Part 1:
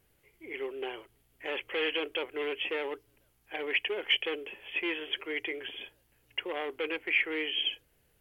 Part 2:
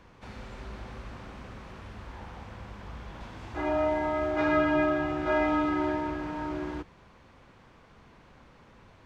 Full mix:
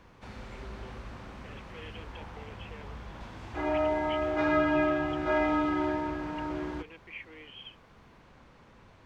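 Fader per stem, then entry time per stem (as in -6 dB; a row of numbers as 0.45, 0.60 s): -16.5, -1.0 dB; 0.00, 0.00 s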